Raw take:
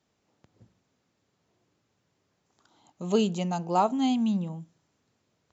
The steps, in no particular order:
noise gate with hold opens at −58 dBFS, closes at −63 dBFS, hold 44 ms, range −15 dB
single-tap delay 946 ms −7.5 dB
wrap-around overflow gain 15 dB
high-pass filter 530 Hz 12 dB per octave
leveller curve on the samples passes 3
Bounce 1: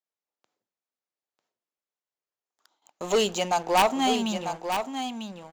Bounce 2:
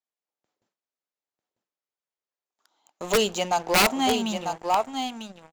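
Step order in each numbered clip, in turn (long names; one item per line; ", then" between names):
high-pass filter, then wrap-around overflow, then leveller curve on the samples, then single-tap delay, then noise gate with hold
high-pass filter, then noise gate with hold, then single-tap delay, then leveller curve on the samples, then wrap-around overflow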